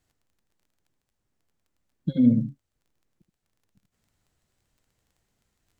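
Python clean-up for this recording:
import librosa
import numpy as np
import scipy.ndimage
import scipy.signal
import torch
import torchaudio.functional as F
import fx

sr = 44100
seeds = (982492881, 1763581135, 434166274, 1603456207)

y = fx.fix_declick_ar(x, sr, threshold=6.5)
y = fx.fix_echo_inverse(y, sr, delay_ms=77, level_db=-9.0)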